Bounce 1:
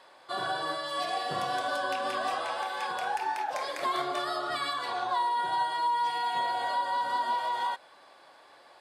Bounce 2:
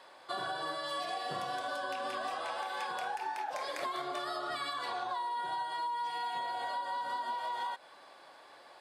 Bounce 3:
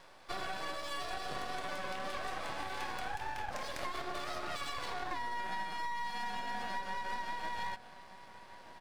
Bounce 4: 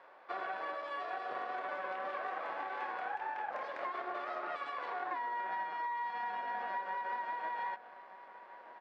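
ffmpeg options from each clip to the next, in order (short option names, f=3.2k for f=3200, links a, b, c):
-af "highpass=88,acompressor=threshold=-34dB:ratio=6"
-filter_complex "[0:a]asplit=2[a][b];[b]adelay=1224,volume=-14dB,highshelf=f=4k:g=-27.6[c];[a][c]amix=inputs=2:normalize=0,aeval=exprs='max(val(0),0)':c=same,volume=1.5dB"
-af "asuperpass=centerf=870:order=4:qfactor=0.58,volume=2dB"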